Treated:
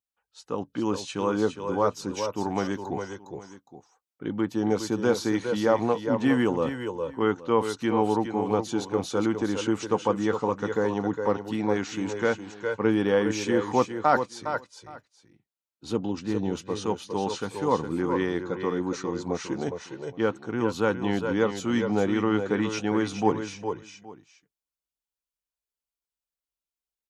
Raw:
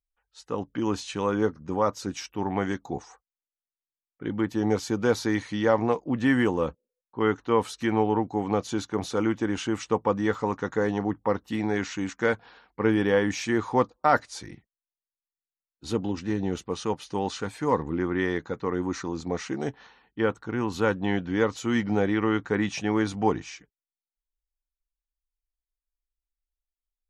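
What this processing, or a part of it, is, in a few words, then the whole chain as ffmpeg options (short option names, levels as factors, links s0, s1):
ducked delay: -filter_complex "[0:a]highpass=110,equalizer=f=1900:t=o:w=0.42:g=-5.5,asettb=1/sr,asplit=3[s0][s1][s2];[s0]atrim=end=14.234[s3];[s1]atrim=start=14.23:end=15.95,asetpts=PTS-STARTPTS,afade=t=in:d=0.004:c=qsin,afade=t=out:st=1.716:d=0.004:c=qsin,highshelf=f=5000:g=-5.5[s4];[s2]atrim=start=15.946[s5];[s3][s4]acrossfade=d=0.004:c1=hsin:c2=qsin[s6];[s6][s5]acrossfade=d=0.004:c1=qsin:c2=hsin,asplit=3[s7][s8][s9];[s8]adelay=409,volume=0.501[s10];[s9]apad=whole_len=1212900[s11];[s10][s11]sidechaincompress=threshold=0.0282:ratio=8:attack=39:release=841[s12];[s7][s12]amix=inputs=2:normalize=0,aecho=1:1:411:0.398"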